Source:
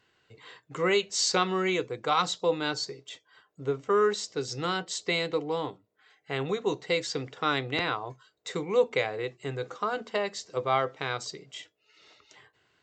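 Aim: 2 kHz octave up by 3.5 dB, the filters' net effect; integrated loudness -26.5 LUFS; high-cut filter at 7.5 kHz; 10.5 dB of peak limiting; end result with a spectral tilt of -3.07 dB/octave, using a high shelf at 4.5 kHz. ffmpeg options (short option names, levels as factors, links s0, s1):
-af "lowpass=7500,equalizer=f=2000:t=o:g=3.5,highshelf=f=4500:g=4.5,volume=1.78,alimiter=limit=0.2:level=0:latency=1"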